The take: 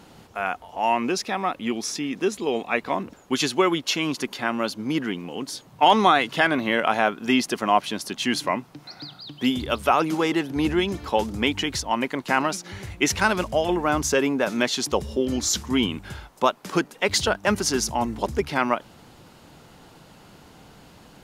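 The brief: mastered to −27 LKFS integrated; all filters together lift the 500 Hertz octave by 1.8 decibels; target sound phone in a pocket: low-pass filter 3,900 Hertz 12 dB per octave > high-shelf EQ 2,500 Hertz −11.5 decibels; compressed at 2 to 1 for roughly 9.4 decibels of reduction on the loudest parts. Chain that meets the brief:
parametric band 500 Hz +3 dB
downward compressor 2 to 1, threshold −29 dBFS
low-pass filter 3,900 Hz 12 dB per octave
high-shelf EQ 2,500 Hz −11.5 dB
level +4 dB

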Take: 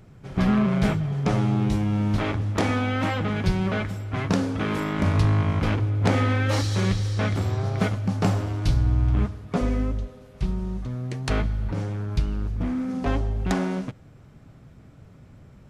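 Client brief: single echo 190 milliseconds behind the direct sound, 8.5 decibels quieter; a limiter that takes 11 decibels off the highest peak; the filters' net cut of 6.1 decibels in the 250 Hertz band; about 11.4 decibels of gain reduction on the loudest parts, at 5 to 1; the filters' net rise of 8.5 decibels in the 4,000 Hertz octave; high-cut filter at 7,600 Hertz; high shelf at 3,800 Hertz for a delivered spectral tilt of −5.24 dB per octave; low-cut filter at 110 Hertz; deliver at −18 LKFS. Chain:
high-pass filter 110 Hz
low-pass filter 7,600 Hz
parametric band 250 Hz −8 dB
high-shelf EQ 3,800 Hz +5 dB
parametric band 4,000 Hz +8 dB
downward compressor 5 to 1, threshold −33 dBFS
brickwall limiter −25.5 dBFS
single-tap delay 190 ms −8.5 dB
level +19 dB

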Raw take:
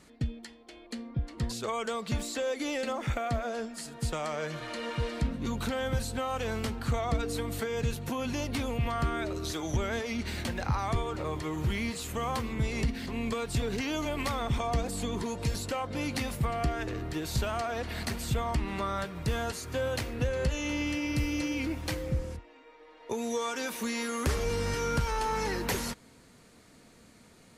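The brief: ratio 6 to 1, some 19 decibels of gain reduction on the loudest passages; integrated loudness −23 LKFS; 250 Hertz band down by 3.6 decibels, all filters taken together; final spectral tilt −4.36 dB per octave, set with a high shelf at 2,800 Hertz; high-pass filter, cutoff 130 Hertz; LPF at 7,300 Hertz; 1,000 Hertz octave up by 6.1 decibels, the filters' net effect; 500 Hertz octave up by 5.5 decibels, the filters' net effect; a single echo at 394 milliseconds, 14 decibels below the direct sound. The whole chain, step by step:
high-pass filter 130 Hz
low-pass filter 7,300 Hz
parametric band 250 Hz −6 dB
parametric band 500 Hz +6 dB
parametric band 1,000 Hz +7.5 dB
high-shelf EQ 2,800 Hz −8.5 dB
downward compressor 6 to 1, threshold −44 dBFS
single-tap delay 394 ms −14 dB
level +23 dB

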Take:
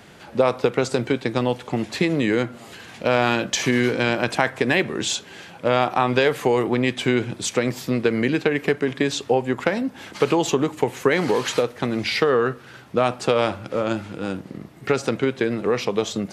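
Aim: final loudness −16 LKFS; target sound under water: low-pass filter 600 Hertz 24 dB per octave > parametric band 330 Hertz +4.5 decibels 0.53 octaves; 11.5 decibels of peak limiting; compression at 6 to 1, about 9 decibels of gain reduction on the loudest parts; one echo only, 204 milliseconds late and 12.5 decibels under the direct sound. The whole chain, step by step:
downward compressor 6 to 1, threshold −24 dBFS
brickwall limiter −19 dBFS
low-pass filter 600 Hz 24 dB per octave
parametric band 330 Hz +4.5 dB 0.53 octaves
single-tap delay 204 ms −12.5 dB
level +15.5 dB

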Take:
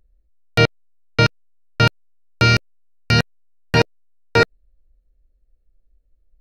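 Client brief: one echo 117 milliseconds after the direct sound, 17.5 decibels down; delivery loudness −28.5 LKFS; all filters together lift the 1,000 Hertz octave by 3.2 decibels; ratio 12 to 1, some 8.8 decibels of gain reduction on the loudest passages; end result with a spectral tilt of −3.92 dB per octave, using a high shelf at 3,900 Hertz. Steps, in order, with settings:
parametric band 1,000 Hz +6 dB
high-shelf EQ 3,900 Hz −5.5 dB
downward compressor 12 to 1, threshold −17 dBFS
single-tap delay 117 ms −17.5 dB
level −2.5 dB

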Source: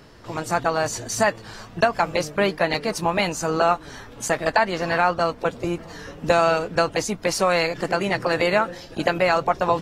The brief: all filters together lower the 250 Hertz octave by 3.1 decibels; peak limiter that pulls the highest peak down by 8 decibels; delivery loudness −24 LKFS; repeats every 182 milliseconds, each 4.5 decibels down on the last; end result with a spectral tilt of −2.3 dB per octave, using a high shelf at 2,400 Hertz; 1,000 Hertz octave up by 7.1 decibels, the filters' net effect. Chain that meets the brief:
parametric band 250 Hz −6 dB
parametric band 1,000 Hz +8.5 dB
high-shelf EQ 2,400 Hz +6.5 dB
brickwall limiter −7 dBFS
repeating echo 182 ms, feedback 60%, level −4.5 dB
level −5 dB

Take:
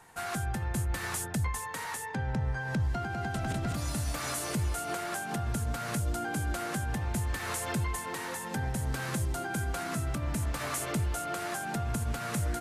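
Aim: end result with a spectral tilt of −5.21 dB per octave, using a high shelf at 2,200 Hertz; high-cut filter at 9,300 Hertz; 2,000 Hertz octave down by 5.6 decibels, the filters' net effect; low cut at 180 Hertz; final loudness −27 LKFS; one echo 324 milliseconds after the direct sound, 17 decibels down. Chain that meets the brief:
high-pass filter 180 Hz
low-pass filter 9,300 Hz
parametric band 2,000 Hz −3.5 dB
high-shelf EQ 2,200 Hz −8 dB
single-tap delay 324 ms −17 dB
level +11.5 dB

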